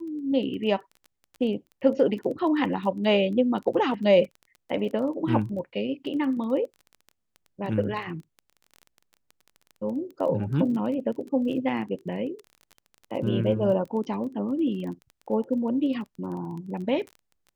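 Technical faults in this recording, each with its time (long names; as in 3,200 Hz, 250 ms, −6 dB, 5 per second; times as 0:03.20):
surface crackle 16 per second −35 dBFS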